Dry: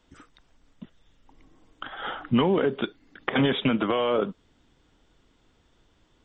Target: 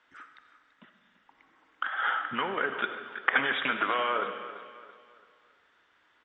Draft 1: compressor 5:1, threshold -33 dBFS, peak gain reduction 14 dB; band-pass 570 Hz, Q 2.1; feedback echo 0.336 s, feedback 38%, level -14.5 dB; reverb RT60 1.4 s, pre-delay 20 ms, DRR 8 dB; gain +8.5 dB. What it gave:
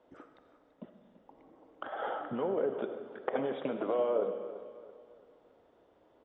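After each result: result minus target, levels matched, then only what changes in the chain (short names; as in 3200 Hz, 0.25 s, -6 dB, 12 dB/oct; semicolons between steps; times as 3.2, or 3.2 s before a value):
2000 Hz band -14.5 dB; compressor: peak gain reduction +9 dB
change: band-pass 1600 Hz, Q 2.1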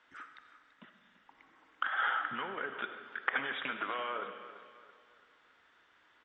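compressor: peak gain reduction +9 dB
change: compressor 5:1, threshold -21.5 dBFS, peak gain reduction 4.5 dB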